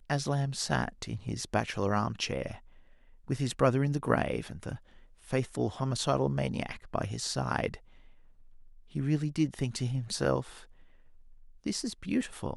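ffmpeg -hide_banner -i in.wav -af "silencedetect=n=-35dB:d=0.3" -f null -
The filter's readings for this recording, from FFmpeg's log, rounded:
silence_start: 2.52
silence_end: 3.30 | silence_duration: 0.78
silence_start: 4.76
silence_end: 5.33 | silence_duration: 0.57
silence_start: 7.74
silence_end: 8.95 | silence_duration: 1.21
silence_start: 10.42
silence_end: 11.66 | silence_duration: 1.25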